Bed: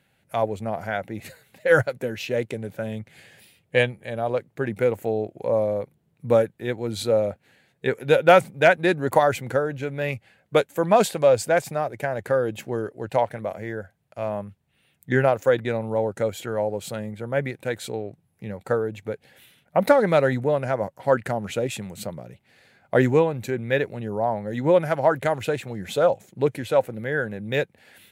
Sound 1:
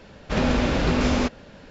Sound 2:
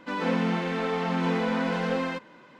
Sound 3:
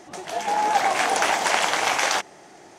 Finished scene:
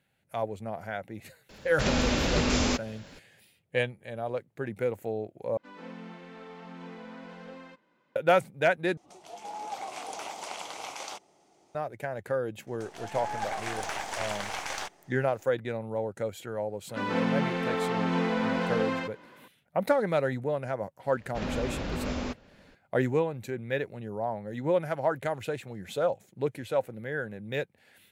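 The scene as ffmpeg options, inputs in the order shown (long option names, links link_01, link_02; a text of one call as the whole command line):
ffmpeg -i bed.wav -i cue0.wav -i cue1.wav -i cue2.wav -filter_complex "[1:a]asplit=2[link_01][link_02];[2:a]asplit=2[link_03][link_04];[3:a]asplit=2[link_05][link_06];[0:a]volume=-8dB[link_07];[link_01]aemphasis=mode=production:type=75fm[link_08];[link_05]equalizer=frequency=1700:width=3.3:gain=-13[link_09];[link_06]aeval=exprs='if(lt(val(0),0),0.447*val(0),val(0))':channel_layout=same[link_10];[link_07]asplit=3[link_11][link_12][link_13];[link_11]atrim=end=5.574[link_14];[link_03]atrim=end=2.59,asetpts=PTS-STARTPTS,volume=-18dB[link_15];[link_12]atrim=start=8.156:end=8.974[link_16];[link_09]atrim=end=2.78,asetpts=PTS-STARTPTS,volume=-16dB[link_17];[link_13]atrim=start=11.746[link_18];[link_08]atrim=end=1.7,asetpts=PTS-STARTPTS,volume=-4.5dB,afade=type=in:duration=0.004:curve=hsin,afade=type=out:start_time=1.696:duration=0.004:curve=hsin,adelay=1490[link_19];[link_10]atrim=end=2.78,asetpts=PTS-STARTPTS,volume=-11dB,afade=type=in:duration=0.004:curve=hsin,afade=type=out:start_time=2.776:duration=0.004:curve=hsin,adelay=12670[link_20];[link_04]atrim=end=2.59,asetpts=PTS-STARTPTS,volume=-1.5dB,afade=type=in:duration=0.004:curve=hsin,afade=type=out:start_time=2.586:duration=0.004:curve=hsin,adelay=16890[link_21];[link_02]atrim=end=1.7,asetpts=PTS-STARTPTS,volume=-11.5dB,afade=type=in:duration=0.004:curve=hsin,afade=type=out:start_time=1.696:duration=0.004:curve=hsin,adelay=21050[link_22];[link_14][link_15]acrossfade=duration=0.004:curve1=hsin:curve2=hsin[link_23];[link_23][link_16]acrossfade=duration=0.004:curve1=hsin:curve2=hsin[link_24];[link_24][link_17]acrossfade=duration=0.004:curve1=hsin:curve2=hsin[link_25];[link_25][link_18]acrossfade=duration=0.004:curve1=hsin:curve2=hsin[link_26];[link_26][link_19][link_20][link_21][link_22]amix=inputs=5:normalize=0" out.wav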